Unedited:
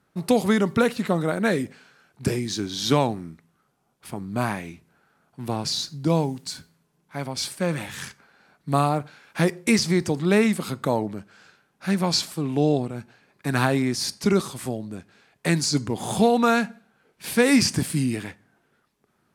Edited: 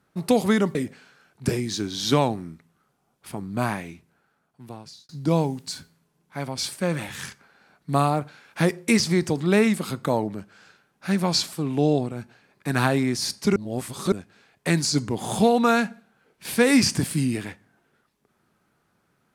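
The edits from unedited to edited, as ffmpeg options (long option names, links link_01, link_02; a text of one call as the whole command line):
ffmpeg -i in.wav -filter_complex "[0:a]asplit=5[link_01][link_02][link_03][link_04][link_05];[link_01]atrim=end=0.752[link_06];[link_02]atrim=start=1.538:end=5.88,asetpts=PTS-STARTPTS,afade=type=out:start_time=2.932:duration=1.41[link_07];[link_03]atrim=start=5.88:end=14.352,asetpts=PTS-STARTPTS,afade=type=in:duration=0.004:curve=hsin[link_08];[link_04]atrim=start=14.348:end=14.912,asetpts=PTS-STARTPTS,areverse[link_09];[link_05]atrim=start=14.908[link_10];[link_07][link_08]concat=n=2:v=0:a=1[link_11];[link_06][link_11]acrossfade=duration=0.004:curve1=hsin:curve2=hsin[link_12];[link_12][link_09]acrossfade=duration=0.004:curve1=hsin:curve2=hsin[link_13];[link_13][link_10]acrossfade=duration=0.004:curve1=hsin:curve2=hsin" out.wav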